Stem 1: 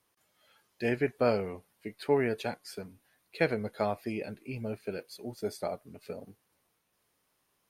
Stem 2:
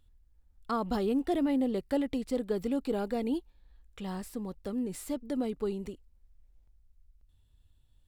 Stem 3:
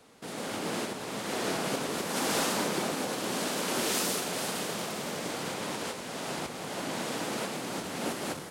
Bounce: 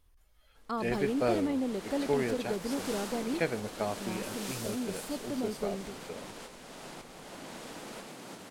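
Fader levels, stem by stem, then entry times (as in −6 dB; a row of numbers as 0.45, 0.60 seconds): −3.0, −3.0, −10.5 decibels; 0.00, 0.00, 0.55 seconds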